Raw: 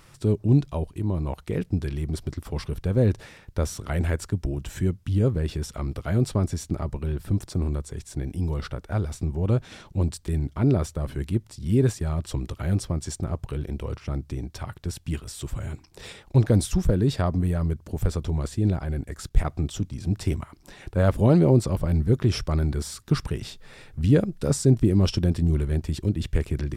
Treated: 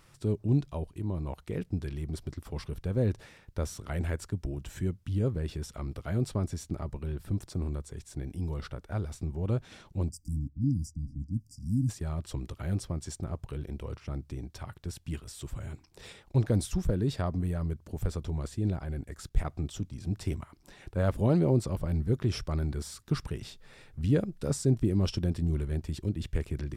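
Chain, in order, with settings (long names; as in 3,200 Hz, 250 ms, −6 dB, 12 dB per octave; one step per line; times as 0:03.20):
0:10.48–0:11.37: low-pass that shuts in the quiet parts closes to 1,000 Hz, open at −18.5 dBFS
0:10.09–0:11.89: time-frequency box erased 320–4,700 Hz
level −7 dB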